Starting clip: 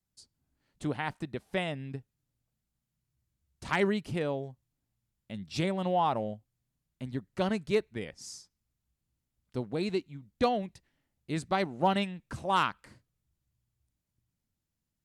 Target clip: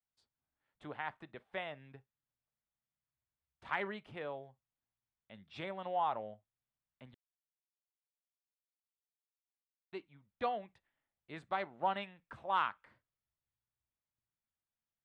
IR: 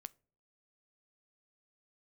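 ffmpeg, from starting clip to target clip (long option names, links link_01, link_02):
-filter_complex "[0:a]acrossover=split=570 2600:gain=0.2 1 0.0631[link_01][link_02][link_03];[link_01][link_02][link_03]amix=inputs=3:normalize=0[link_04];[1:a]atrim=start_sample=2205,atrim=end_sample=3087[link_05];[link_04][link_05]afir=irnorm=-1:irlink=0,asettb=1/sr,asplit=3[link_06][link_07][link_08];[link_06]atrim=end=7.144[link_09];[link_07]atrim=start=7.14:end=9.93,asetpts=PTS-STARTPTS,afade=type=in:duration=0.004:curve=qsin,afade=type=out:start_time=2.786:duration=0.004:curve=qsin,acrusher=bits=3:mix=0:aa=0.5[link_10];[link_08]atrim=start=9.926[link_11];[link_09][link_10]acrossfade=duration=0.004:curve1=hsin:curve2=qsin[link_12];[link_12][link_11]acrossfade=duration=0.004:curve1=qsin:curve2=hsin,equalizer=frequency=3500:width=5.4:gain=7,volume=1.5dB"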